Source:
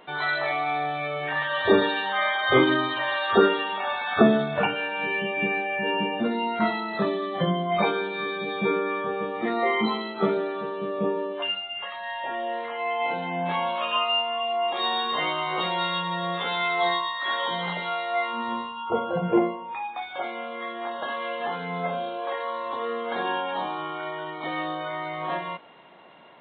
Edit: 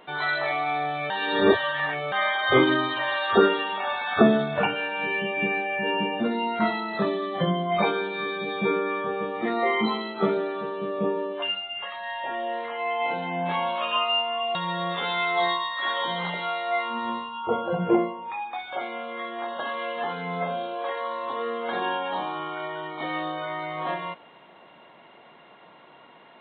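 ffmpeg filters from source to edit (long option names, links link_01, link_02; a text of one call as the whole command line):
ffmpeg -i in.wav -filter_complex "[0:a]asplit=4[link_01][link_02][link_03][link_04];[link_01]atrim=end=1.102[link_05];[link_02]atrim=start=1.098:end=2.122,asetpts=PTS-STARTPTS,areverse[link_06];[link_03]atrim=start=2.118:end=14.552[link_07];[link_04]atrim=start=15.978[link_08];[link_05][link_06]acrossfade=duration=0.004:curve1=hsin:curve2=hsin[link_09];[link_09][link_07]acrossfade=duration=0.004:curve1=hsin:curve2=hsin[link_10];[link_10][link_08]acrossfade=duration=0.004:curve1=hsin:curve2=hsin" out.wav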